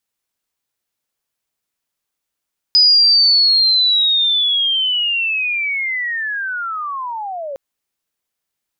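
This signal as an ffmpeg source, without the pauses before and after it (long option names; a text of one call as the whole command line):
ffmpeg -f lavfi -i "aevalsrc='pow(10,(-7-16.5*t/4.81)/20)*sin(2*PI*(5000*t-4470*t*t/(2*4.81)))':duration=4.81:sample_rate=44100" out.wav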